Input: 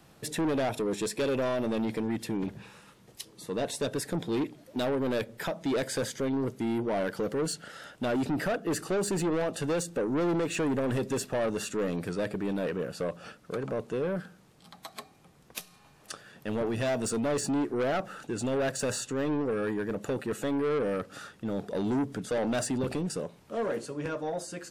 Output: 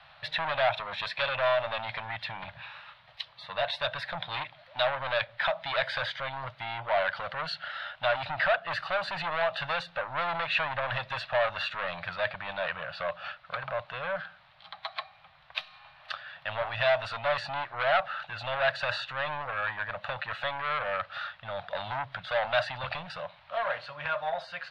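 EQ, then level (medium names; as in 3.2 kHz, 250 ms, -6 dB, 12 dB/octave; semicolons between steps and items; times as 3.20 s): FFT filter 100 Hz 0 dB, 160 Hz -6 dB, 240 Hz -26 dB, 420 Hz -25 dB, 600 Hz +8 dB, 1.6 kHz +13 dB, 4 kHz +12 dB, 7.2 kHz -26 dB; -3.5 dB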